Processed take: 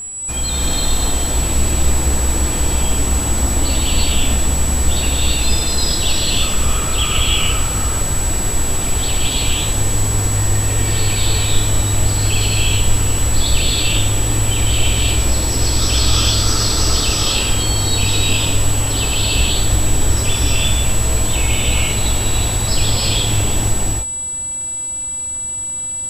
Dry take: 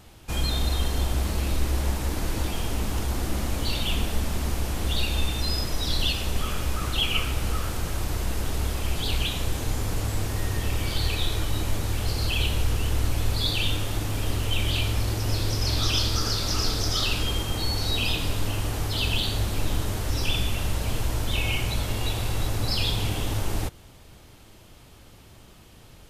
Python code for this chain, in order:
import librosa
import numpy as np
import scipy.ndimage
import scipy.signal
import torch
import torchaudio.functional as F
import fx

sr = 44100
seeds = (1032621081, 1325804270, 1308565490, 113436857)

y = x + 10.0 ** (-29.0 / 20.0) * np.sin(2.0 * np.pi * 7800.0 * np.arange(len(x)) / sr)
y = fx.rev_gated(y, sr, seeds[0], gate_ms=370, shape='rising', drr_db=-4.0)
y = y * librosa.db_to_amplitude(3.0)